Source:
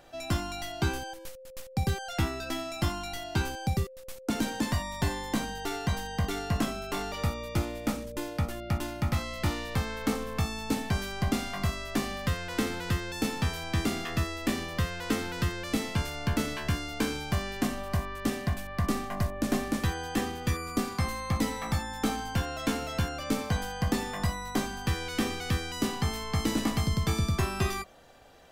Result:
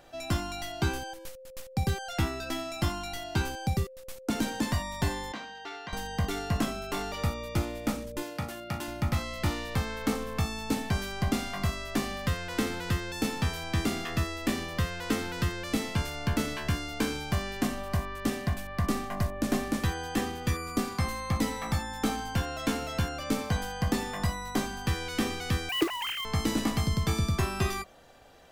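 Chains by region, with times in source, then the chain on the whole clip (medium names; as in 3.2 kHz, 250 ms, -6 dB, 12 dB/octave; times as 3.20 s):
5.32–5.93 s: high-pass 1.2 kHz 6 dB/octave + distance through air 190 m
8.22–8.88 s: high-pass 140 Hz + peaking EQ 270 Hz -4 dB 1.5 oct + flutter echo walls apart 6.5 m, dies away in 0.2 s
25.69–26.25 s: formants replaced by sine waves + companded quantiser 4-bit
whole clip: none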